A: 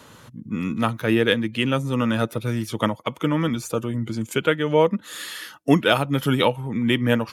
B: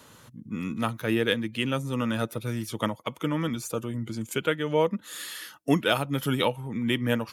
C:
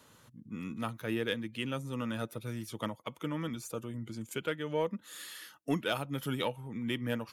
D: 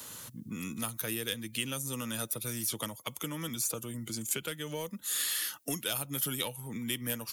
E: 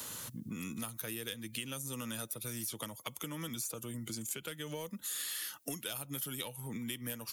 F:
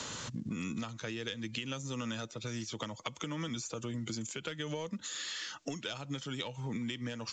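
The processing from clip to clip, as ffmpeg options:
ffmpeg -i in.wav -af "highshelf=frequency=6100:gain=6.5,volume=-6dB" out.wav
ffmpeg -i in.wav -af "asoftclip=type=tanh:threshold=-9dB,volume=-8dB" out.wav
ffmpeg -i in.wav -filter_complex "[0:a]acrossover=split=140|4800[link_01][link_02][link_03];[link_01]acompressor=threshold=-56dB:ratio=4[link_04];[link_02]acompressor=threshold=-47dB:ratio=4[link_05];[link_03]acompressor=threshold=-53dB:ratio=4[link_06];[link_04][link_05][link_06]amix=inputs=3:normalize=0,crystalizer=i=3.5:c=0,volume=7.5dB" out.wav
ffmpeg -i in.wav -af "acompressor=threshold=-42dB:ratio=3,volume=2.5dB" out.wav
ffmpeg -i in.wav -af "highshelf=frequency=6000:gain=-4,acompressor=threshold=-43dB:ratio=2.5,volume=7.5dB" -ar 16000 -c:a pcm_mulaw out.wav

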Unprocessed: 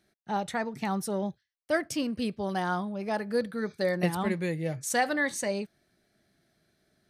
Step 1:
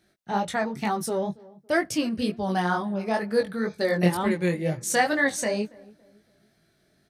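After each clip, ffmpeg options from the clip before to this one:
ffmpeg -i in.wav -filter_complex "[0:a]flanger=delay=18:depth=4.9:speed=2.1,asplit=2[link_01][link_02];[link_02]adelay=280,lowpass=frequency=1000:poles=1,volume=-21.5dB,asplit=2[link_03][link_04];[link_04]adelay=280,lowpass=frequency=1000:poles=1,volume=0.39,asplit=2[link_05][link_06];[link_06]adelay=280,lowpass=frequency=1000:poles=1,volume=0.39[link_07];[link_01][link_03][link_05][link_07]amix=inputs=4:normalize=0,volume=7.5dB" out.wav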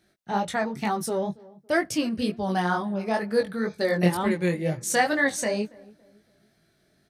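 ffmpeg -i in.wav -af anull out.wav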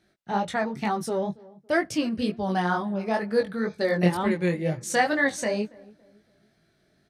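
ffmpeg -i in.wav -af "highshelf=frequency=9200:gain=-11.5" out.wav

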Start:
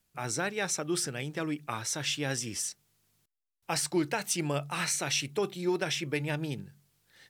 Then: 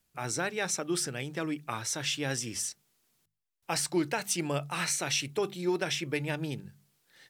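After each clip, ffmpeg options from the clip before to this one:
ffmpeg -i in.wav -af "bandreject=frequency=50:width_type=h:width=6,bandreject=frequency=100:width_type=h:width=6,bandreject=frequency=150:width_type=h:width=6,bandreject=frequency=200:width_type=h:width=6" out.wav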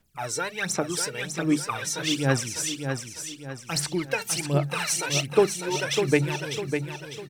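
ffmpeg -i in.wav -filter_complex "[0:a]aphaser=in_gain=1:out_gain=1:delay=2.2:decay=0.76:speed=1.3:type=sinusoidal,asplit=2[link_01][link_02];[link_02]aecho=0:1:601|1202|1803|2404|3005:0.473|0.194|0.0795|0.0326|0.0134[link_03];[link_01][link_03]amix=inputs=2:normalize=0" out.wav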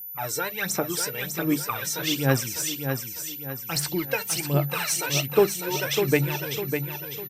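ffmpeg -i in.wav -filter_complex "[0:a]aeval=exprs='val(0)+0.0158*sin(2*PI*14000*n/s)':channel_layout=same,asplit=2[link_01][link_02];[link_02]adelay=15,volume=-13.5dB[link_03];[link_01][link_03]amix=inputs=2:normalize=0" out.wav

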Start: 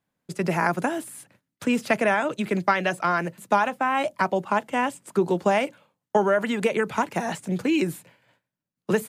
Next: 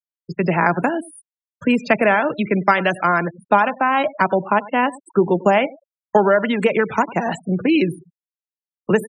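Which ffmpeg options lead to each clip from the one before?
ffmpeg -i in.wav -af "aecho=1:1:97|194:0.112|0.0303,afftfilt=real='re*gte(hypot(re,im),0.0251)':imag='im*gte(hypot(re,im),0.0251)':win_size=1024:overlap=0.75,volume=6dB" out.wav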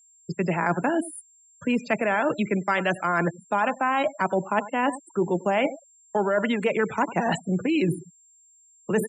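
ffmpeg -i in.wav -af "areverse,acompressor=threshold=-24dB:ratio=6,areverse,aeval=exprs='val(0)+0.00126*sin(2*PI*7400*n/s)':channel_layout=same,volume=3dB" out.wav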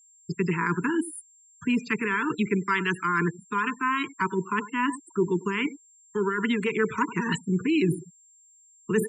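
ffmpeg -i in.wav -af "asuperstop=centerf=650:order=20:qfactor=1.4" out.wav

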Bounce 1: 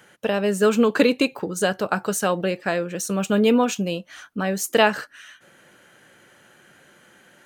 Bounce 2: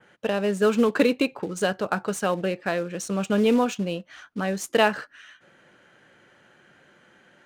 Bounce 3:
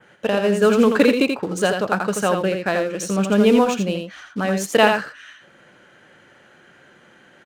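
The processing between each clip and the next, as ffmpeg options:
ffmpeg -i in.wav -af "acrusher=bits=5:mode=log:mix=0:aa=0.000001,adynamicsmooth=sensitivity=5.5:basefreq=5200,adynamicequalizer=threshold=0.00891:dfrequency=5700:dqfactor=0.77:tfrequency=5700:tqfactor=0.77:attack=5:release=100:ratio=0.375:range=2:mode=cutabove:tftype=bell,volume=-2.5dB" out.wav
ffmpeg -i in.wav -af "aecho=1:1:83:0.531,volume=4.5dB" out.wav

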